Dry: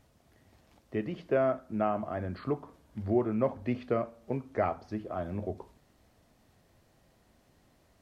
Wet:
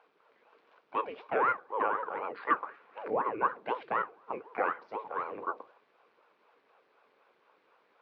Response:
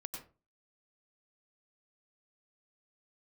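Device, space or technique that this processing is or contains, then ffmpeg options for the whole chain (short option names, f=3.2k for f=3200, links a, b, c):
voice changer toy: -filter_complex "[0:a]asettb=1/sr,asplit=3[a][b][c];[a]atrim=end=2.474[d];[b]atrim=start=2.47:end=3.08,asetpts=PTS-STARTPTS,afade=t=in:d=0.004:c=qsin,afade=t=out:st=0.606:d=0.004:c=qsin,equalizer=f=250:t=o:w=1:g=-11,equalizer=f=500:t=o:w=1:g=6,equalizer=f=1k:t=o:w=1:g=9,equalizer=f=2k:t=o:w=1:g=9[e];[c]atrim=start=3.076[f];[d][e]acrossfade=d=0.004:c1=hsin:c2=qsin[g];[g][f]acrossfade=d=0.004:c1=qsin:c2=hsin,aeval=exprs='val(0)*sin(2*PI*430*n/s+430*0.8/4*sin(2*PI*4*n/s))':c=same,highpass=420,equalizer=f=460:t=q:w=4:g=7,equalizer=f=670:t=q:w=4:g=-3,equalizer=f=1.1k:t=q:w=4:g=7,equalizer=f=1.5k:t=q:w=4:g=6,equalizer=f=2.4k:t=q:w=4:g=6,lowpass=f=4k:w=0.5412,lowpass=f=4k:w=1.3066"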